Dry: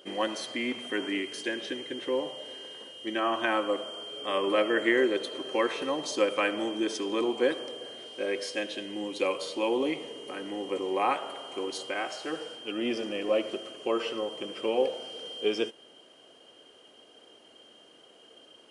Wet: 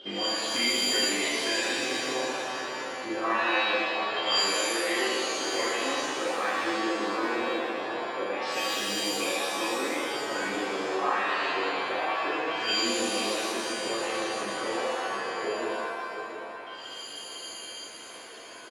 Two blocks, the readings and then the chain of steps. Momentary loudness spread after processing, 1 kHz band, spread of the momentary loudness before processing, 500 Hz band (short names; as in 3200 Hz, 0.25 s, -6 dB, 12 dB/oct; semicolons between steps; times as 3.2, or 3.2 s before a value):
13 LU, +5.0 dB, 11 LU, -1.5 dB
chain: compressor 6:1, threshold -38 dBFS, peak gain reduction 17 dB; echo 0.693 s -9.5 dB; LFO low-pass saw down 0.24 Hz 780–3700 Hz; shimmer reverb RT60 1.3 s, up +7 st, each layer -2 dB, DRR -7 dB